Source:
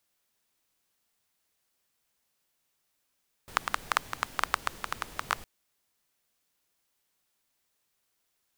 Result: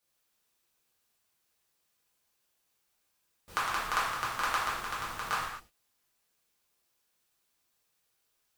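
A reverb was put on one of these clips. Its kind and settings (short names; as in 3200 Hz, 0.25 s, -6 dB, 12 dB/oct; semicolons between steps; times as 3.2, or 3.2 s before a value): non-linear reverb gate 0.28 s falling, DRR -8 dB; gain -8 dB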